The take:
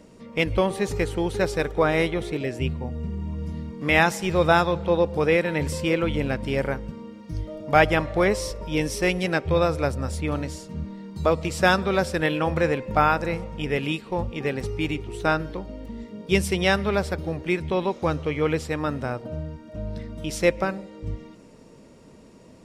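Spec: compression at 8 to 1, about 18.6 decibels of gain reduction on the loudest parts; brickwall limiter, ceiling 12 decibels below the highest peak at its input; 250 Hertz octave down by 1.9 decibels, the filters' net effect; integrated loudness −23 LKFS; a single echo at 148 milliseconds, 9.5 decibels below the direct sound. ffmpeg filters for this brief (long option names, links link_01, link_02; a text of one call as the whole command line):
ffmpeg -i in.wav -af "equalizer=frequency=250:width_type=o:gain=-3,acompressor=threshold=-33dB:ratio=8,alimiter=level_in=7dB:limit=-24dB:level=0:latency=1,volume=-7dB,aecho=1:1:148:0.335,volume=17.5dB" out.wav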